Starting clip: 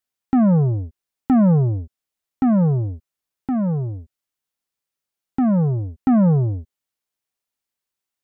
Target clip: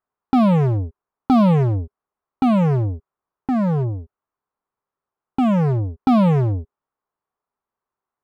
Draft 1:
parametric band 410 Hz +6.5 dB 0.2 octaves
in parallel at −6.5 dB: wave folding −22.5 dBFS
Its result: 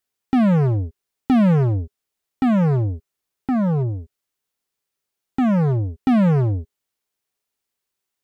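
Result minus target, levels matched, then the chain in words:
1,000 Hz band −4.0 dB
low-pass with resonance 1,100 Hz, resonance Q 2.6
parametric band 410 Hz +6.5 dB 0.2 octaves
in parallel at −6.5 dB: wave folding −22.5 dBFS

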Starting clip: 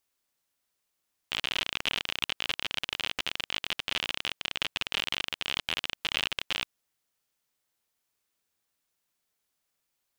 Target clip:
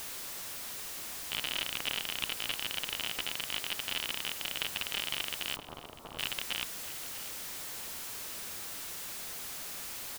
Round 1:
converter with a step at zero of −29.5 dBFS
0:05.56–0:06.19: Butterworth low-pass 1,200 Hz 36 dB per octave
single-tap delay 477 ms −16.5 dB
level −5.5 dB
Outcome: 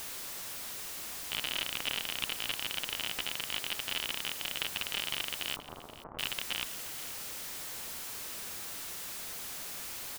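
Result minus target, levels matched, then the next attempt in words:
echo 170 ms early
converter with a step at zero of −29.5 dBFS
0:05.56–0:06.19: Butterworth low-pass 1,200 Hz 36 dB per octave
single-tap delay 647 ms −16.5 dB
level −5.5 dB

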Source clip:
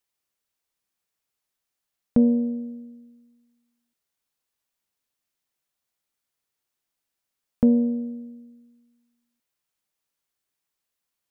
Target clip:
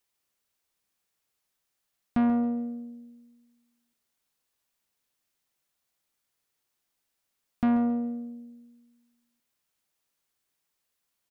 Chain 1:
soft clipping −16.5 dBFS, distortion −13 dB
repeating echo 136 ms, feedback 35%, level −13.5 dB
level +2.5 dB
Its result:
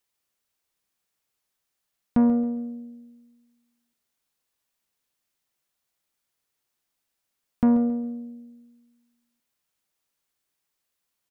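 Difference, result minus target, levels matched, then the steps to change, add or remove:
soft clipping: distortion −6 dB
change: soft clipping −23 dBFS, distortion −7 dB

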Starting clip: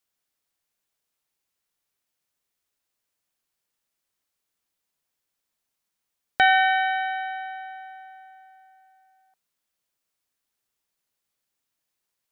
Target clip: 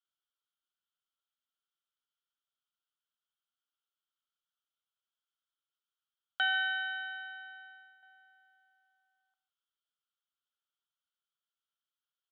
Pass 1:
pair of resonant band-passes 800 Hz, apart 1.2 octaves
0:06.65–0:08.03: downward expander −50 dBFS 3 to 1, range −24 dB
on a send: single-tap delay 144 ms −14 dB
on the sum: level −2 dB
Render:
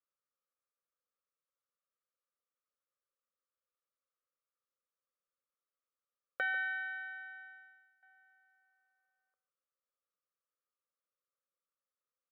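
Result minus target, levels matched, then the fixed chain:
1,000 Hz band −2.5 dB
pair of resonant band-passes 2,100 Hz, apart 1.2 octaves
0:06.65–0:08.03: downward expander −50 dBFS 3 to 1, range −24 dB
on a send: single-tap delay 144 ms −14 dB
on the sum: level −2 dB

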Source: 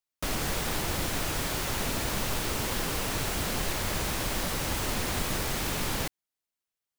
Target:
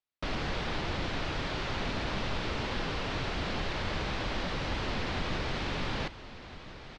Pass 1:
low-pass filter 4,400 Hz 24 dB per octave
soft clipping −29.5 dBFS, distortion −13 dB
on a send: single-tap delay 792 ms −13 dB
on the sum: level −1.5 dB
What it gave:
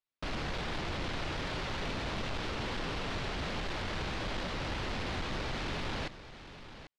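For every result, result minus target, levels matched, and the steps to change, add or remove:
soft clipping: distortion +15 dB; echo 565 ms early
change: soft clipping −18.5 dBFS, distortion −28 dB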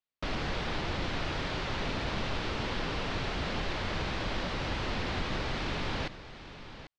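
echo 565 ms early
change: single-tap delay 1,357 ms −13 dB

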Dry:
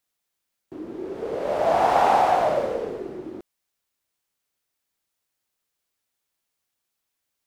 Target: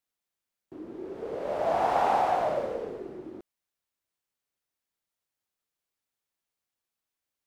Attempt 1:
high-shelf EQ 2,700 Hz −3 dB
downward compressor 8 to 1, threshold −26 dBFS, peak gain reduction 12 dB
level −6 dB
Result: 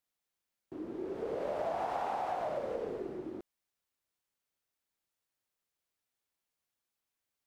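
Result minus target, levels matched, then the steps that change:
downward compressor: peak gain reduction +12 dB
remove: downward compressor 8 to 1, threshold −26 dBFS, peak gain reduction 12 dB

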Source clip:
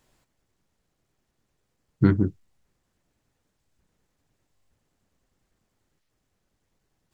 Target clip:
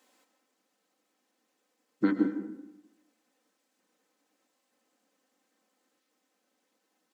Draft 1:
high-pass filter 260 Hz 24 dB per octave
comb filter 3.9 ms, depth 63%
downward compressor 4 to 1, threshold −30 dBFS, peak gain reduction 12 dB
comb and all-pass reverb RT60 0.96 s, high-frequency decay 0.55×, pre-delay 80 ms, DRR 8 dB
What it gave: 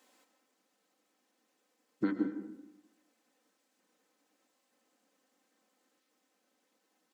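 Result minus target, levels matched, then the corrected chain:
downward compressor: peak gain reduction +6.5 dB
high-pass filter 260 Hz 24 dB per octave
comb filter 3.9 ms, depth 63%
downward compressor 4 to 1, threshold −21.5 dBFS, peak gain reduction 5.5 dB
comb and all-pass reverb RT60 0.96 s, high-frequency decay 0.55×, pre-delay 80 ms, DRR 8 dB

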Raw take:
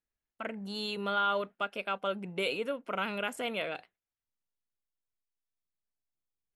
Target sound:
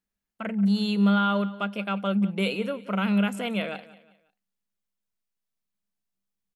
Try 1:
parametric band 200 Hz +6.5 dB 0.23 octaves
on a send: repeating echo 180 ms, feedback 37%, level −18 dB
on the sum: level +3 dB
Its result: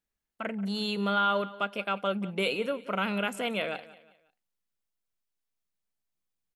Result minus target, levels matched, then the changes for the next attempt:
250 Hz band −5.5 dB
change: parametric band 200 Hz +18.5 dB 0.23 octaves

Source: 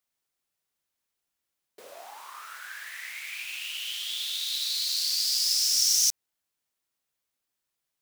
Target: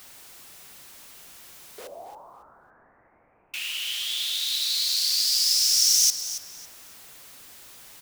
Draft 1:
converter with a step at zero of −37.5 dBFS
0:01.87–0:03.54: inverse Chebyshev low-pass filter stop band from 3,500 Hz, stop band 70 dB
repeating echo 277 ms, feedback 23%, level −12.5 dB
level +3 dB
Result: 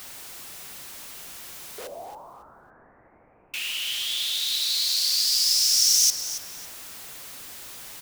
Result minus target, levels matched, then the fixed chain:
converter with a step at zero: distortion +6 dB
converter with a step at zero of −44 dBFS
0:01.87–0:03.54: inverse Chebyshev low-pass filter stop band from 3,500 Hz, stop band 70 dB
repeating echo 277 ms, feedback 23%, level −12.5 dB
level +3 dB

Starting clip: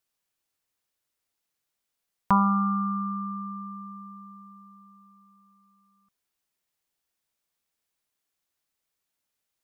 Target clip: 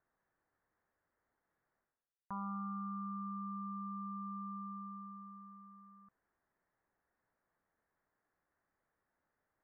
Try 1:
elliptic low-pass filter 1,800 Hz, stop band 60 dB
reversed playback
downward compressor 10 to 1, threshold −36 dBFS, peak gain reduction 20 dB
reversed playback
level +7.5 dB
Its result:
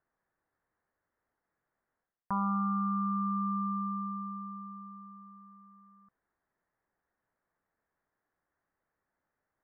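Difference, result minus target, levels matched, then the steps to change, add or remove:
downward compressor: peak gain reduction −11 dB
change: downward compressor 10 to 1, threshold −48 dBFS, peak gain reduction 31 dB

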